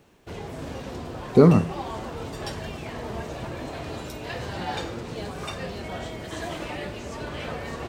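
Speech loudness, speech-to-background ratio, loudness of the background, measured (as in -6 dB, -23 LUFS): -18.5 LUFS, 16.0 dB, -34.5 LUFS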